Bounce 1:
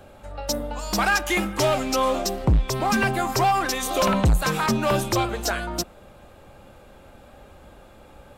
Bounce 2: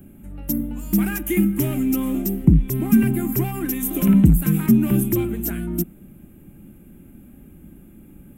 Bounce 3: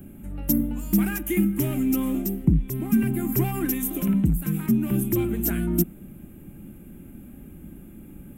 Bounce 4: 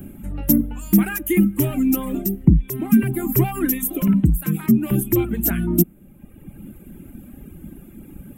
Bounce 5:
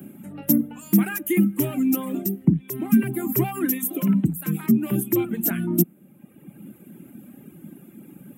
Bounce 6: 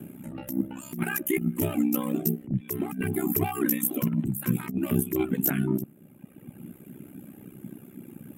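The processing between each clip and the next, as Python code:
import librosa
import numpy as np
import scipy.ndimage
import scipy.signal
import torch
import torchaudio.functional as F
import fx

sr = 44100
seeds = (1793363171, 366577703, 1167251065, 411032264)

y1 = fx.curve_eq(x, sr, hz=(110.0, 170.0, 330.0, 510.0, 1100.0, 2200.0, 3100.0, 4400.0, 13000.0), db=(0, 11, 6, -16, -18, -8, -12, -24, 11))
y1 = F.gain(torch.from_numpy(y1), 1.5).numpy()
y2 = fx.rider(y1, sr, range_db=10, speed_s=0.5)
y2 = F.gain(torch.from_numpy(y2), -4.0).numpy()
y3 = fx.dereverb_blind(y2, sr, rt60_s=1.3)
y3 = fx.dynamic_eq(y3, sr, hz=4800.0, q=0.85, threshold_db=-46.0, ratio=4.0, max_db=-4)
y3 = F.gain(torch.from_numpy(y3), 6.5).numpy()
y4 = scipy.signal.sosfilt(scipy.signal.butter(4, 140.0, 'highpass', fs=sr, output='sos'), y3)
y4 = F.gain(torch.from_numpy(y4), -2.5).numpy()
y5 = y4 * np.sin(2.0 * np.pi * 32.0 * np.arange(len(y4)) / sr)
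y5 = fx.over_compress(y5, sr, threshold_db=-24.0, ratio=-0.5)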